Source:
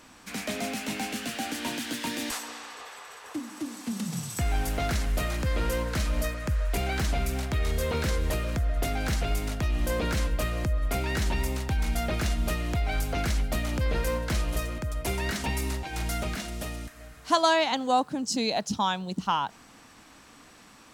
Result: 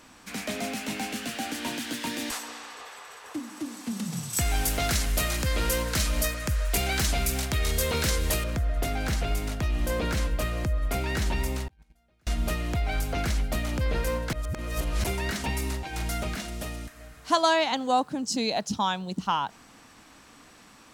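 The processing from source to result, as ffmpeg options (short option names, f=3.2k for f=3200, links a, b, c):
-filter_complex "[0:a]asettb=1/sr,asplit=3[a][b][c];[a]atrim=end=4.334[d];[b]atrim=start=4.33:end=8.44,asetpts=PTS-STARTPTS,afade=t=in:d=0.004:c=qsin,afade=t=out:st=4.106:d=0.004:c=qsin,highshelf=f=2.9k:g=11[e];[c]atrim=start=8.436[f];[d][e]acrossfade=d=0.004:c1=hsin:c2=qsin[g];[g][f]acrossfade=d=0.004:c1=qsin:c2=hsin,asettb=1/sr,asplit=3[h][i][j];[h]atrim=end=11.684[k];[i]atrim=start=11.68:end=12.27,asetpts=PTS-STARTPTS,afade=t=in:d=0.004:c=qsin,afade=t=out:st=0.586:d=0.004:c=qsin,agate=range=-39dB:threshold=-21dB:ratio=16:release=100:detection=peak[l];[j]atrim=start=12.266[m];[k][l]acrossfade=d=0.004:c1=hsin:c2=qsin[n];[n][m]acrossfade=d=0.004:c1=qsin:c2=hsin,asplit=3[o][p][q];[o]atrim=end=14.332[r];[p]atrim=start=14.328:end=15.042,asetpts=PTS-STARTPTS,areverse[s];[q]atrim=start=15.038[t];[r][s]acrossfade=d=0.004:c1=hsin:c2=hsin[u];[u][t]acrossfade=d=0.004:c1=hsin:c2=hsin"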